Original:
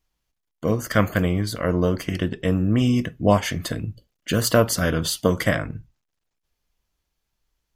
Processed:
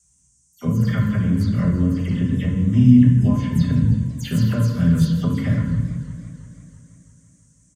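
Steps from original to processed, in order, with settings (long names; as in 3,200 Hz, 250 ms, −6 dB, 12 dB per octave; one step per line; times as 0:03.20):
every frequency bin delayed by itself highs early, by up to 100 ms
comb filter 5 ms, depth 61%
downward compressor 5 to 1, threshold −28 dBFS, peak gain reduction 16 dB
noise in a band 5,900–9,100 Hz −58 dBFS
on a send at −1 dB: convolution reverb RT60 1.0 s, pre-delay 3 ms
on the sum: feedback echo with a swinging delay time 166 ms, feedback 73%, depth 218 cents, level −16 dB
level −4 dB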